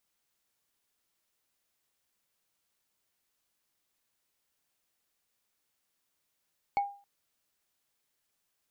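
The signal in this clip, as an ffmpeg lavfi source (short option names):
-f lavfi -i "aevalsrc='0.0794*pow(10,-3*t/0.39)*sin(2*PI*805*t)+0.0224*pow(10,-3*t/0.115)*sin(2*PI*2219.4*t)+0.00631*pow(10,-3*t/0.051)*sin(2*PI*4350.2*t)+0.00178*pow(10,-3*t/0.028)*sin(2*PI*7191.1*t)+0.000501*pow(10,-3*t/0.017)*sin(2*PI*10738.7*t)':d=0.27:s=44100"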